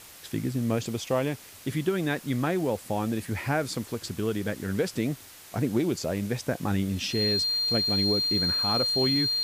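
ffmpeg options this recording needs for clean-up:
-af "bandreject=f=4200:w=30,afwtdn=0.0045"

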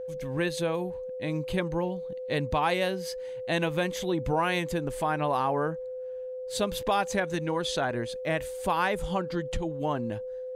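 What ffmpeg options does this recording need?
-af "bandreject=f=510:w=30"

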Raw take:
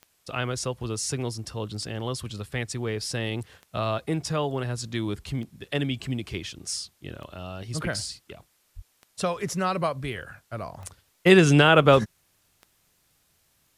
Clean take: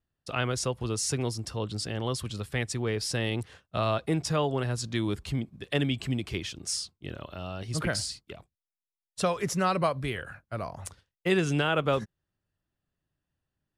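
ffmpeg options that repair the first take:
-filter_complex "[0:a]adeclick=t=4,asplit=3[s0][s1][s2];[s0]afade=t=out:st=8.75:d=0.02[s3];[s1]highpass=f=140:w=0.5412,highpass=f=140:w=1.3066,afade=t=in:st=8.75:d=0.02,afade=t=out:st=8.87:d=0.02[s4];[s2]afade=t=in:st=8.87:d=0.02[s5];[s3][s4][s5]amix=inputs=3:normalize=0,agate=range=0.0891:threshold=0.00112,asetnsamples=n=441:p=0,asendcmd='11.06 volume volume -9.5dB',volume=1"

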